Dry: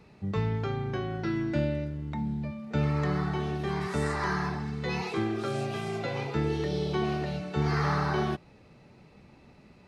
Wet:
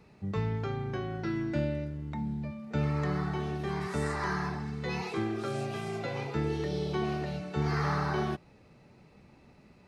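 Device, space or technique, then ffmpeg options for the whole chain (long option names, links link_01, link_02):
exciter from parts: -filter_complex "[0:a]asplit=2[link_01][link_02];[link_02]highpass=frequency=3100:width=0.5412,highpass=frequency=3100:width=1.3066,asoftclip=type=tanh:threshold=-39.5dB,volume=-13dB[link_03];[link_01][link_03]amix=inputs=2:normalize=0,volume=-2.5dB"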